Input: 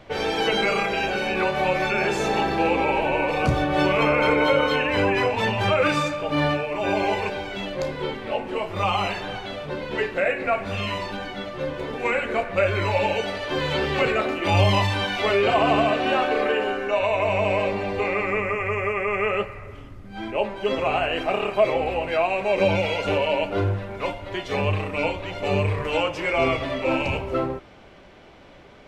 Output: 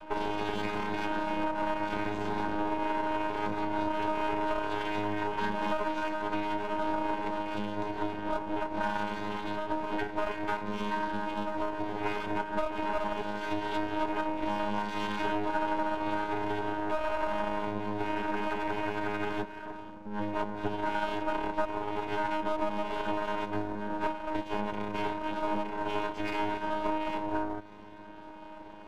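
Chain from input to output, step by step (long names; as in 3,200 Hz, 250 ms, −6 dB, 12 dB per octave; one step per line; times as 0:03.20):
channel vocoder with a chord as carrier bare fifth, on G#3
half-wave rectification
downward compressor 5 to 1, threshold −33 dBFS, peak gain reduction 17 dB
hollow resonant body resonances 960/1,500 Hz, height 11 dB, ringing for 30 ms
level +4.5 dB
MP3 112 kbit/s 48,000 Hz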